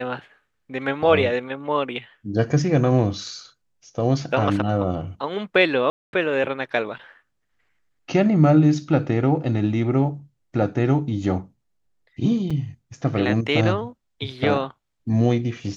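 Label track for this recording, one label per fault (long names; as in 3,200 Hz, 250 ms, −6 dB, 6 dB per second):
5.900000	6.130000	drop-out 231 ms
12.500000	12.510000	drop-out 5 ms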